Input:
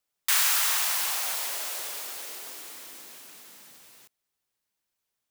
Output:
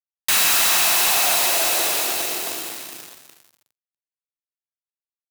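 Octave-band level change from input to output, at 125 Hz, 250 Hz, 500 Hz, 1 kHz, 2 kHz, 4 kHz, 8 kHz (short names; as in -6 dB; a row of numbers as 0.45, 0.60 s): n/a, +19.5 dB, +17.0 dB, +11.0 dB, +9.5 dB, +10.0 dB, +8.5 dB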